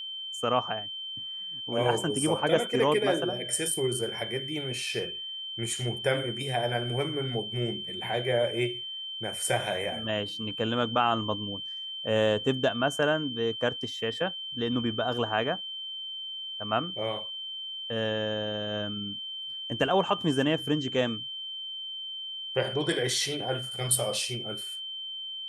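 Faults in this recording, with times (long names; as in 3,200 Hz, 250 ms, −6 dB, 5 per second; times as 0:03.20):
whistle 3,100 Hz −35 dBFS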